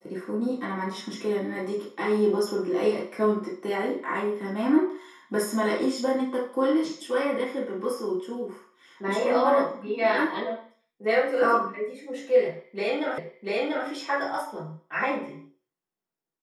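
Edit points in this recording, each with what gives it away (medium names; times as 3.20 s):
13.18 s: repeat of the last 0.69 s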